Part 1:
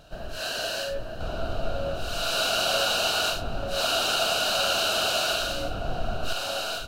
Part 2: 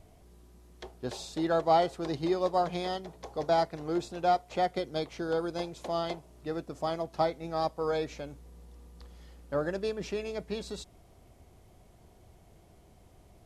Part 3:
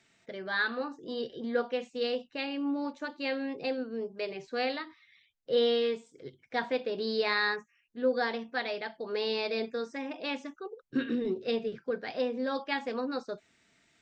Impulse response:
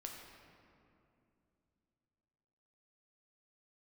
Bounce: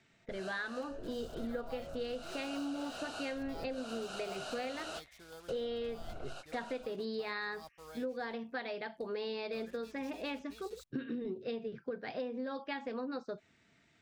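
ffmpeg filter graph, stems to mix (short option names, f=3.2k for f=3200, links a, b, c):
-filter_complex "[0:a]lowpass=f=9.4k:w=0.5412,lowpass=f=9.4k:w=1.3066,equalizer=f=3.8k:t=o:w=1.7:g=-7.5,volume=-13.5dB[a];[1:a]acrusher=bits=6:mix=0:aa=0.5,equalizer=f=330:w=0.34:g=-13.5,volume=-11dB[b];[2:a]lowpass=f=3.5k:p=1,equalizer=f=110:w=0.78:g=5.5,volume=-0.5dB,asplit=2[c][d];[d]apad=whole_len=303179[e];[a][e]sidechaingate=range=-33dB:threshold=-54dB:ratio=16:detection=peak[f];[f][b][c]amix=inputs=3:normalize=0,acompressor=threshold=-36dB:ratio=6"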